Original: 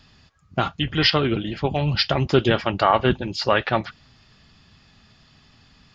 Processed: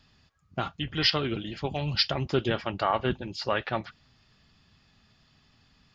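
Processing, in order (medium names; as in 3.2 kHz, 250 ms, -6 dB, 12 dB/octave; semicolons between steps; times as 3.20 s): 0.95–2.09 s: treble shelf 5.6 kHz -> 4 kHz +11 dB; trim -8.5 dB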